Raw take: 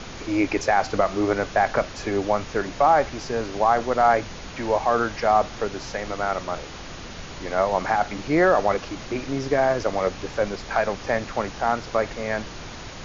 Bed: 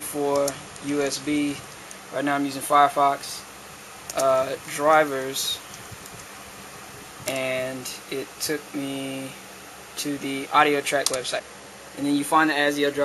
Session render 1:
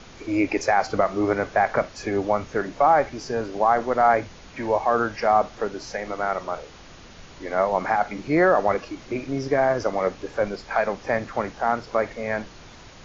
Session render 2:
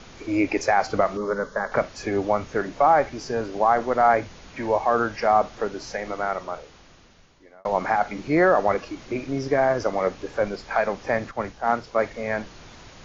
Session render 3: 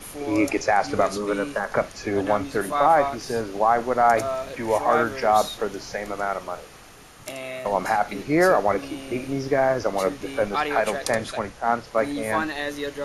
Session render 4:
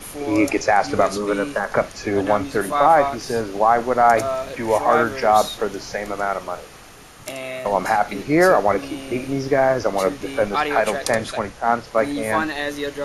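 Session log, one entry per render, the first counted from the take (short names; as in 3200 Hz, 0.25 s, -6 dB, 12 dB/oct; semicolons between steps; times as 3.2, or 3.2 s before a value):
noise print and reduce 8 dB
1.17–1.72 fixed phaser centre 490 Hz, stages 8; 6.1–7.65 fade out; 11.31–12.14 three-band expander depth 100%
add bed -7.5 dB
gain +3.5 dB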